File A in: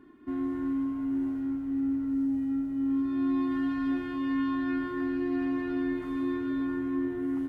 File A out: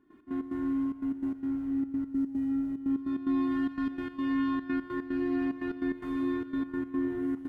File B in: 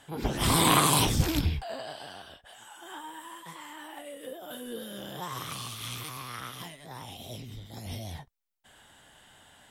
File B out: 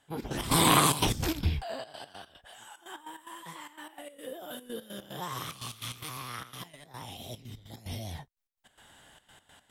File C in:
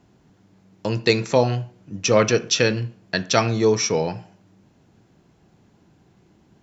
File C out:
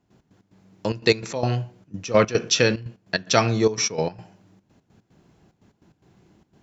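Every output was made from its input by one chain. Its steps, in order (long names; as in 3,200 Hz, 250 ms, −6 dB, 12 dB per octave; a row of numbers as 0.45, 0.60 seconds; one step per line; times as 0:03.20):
gate pattern ".x.x.xxxx" 147 BPM −12 dB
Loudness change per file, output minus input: −1.5, −1.5, −1.5 LU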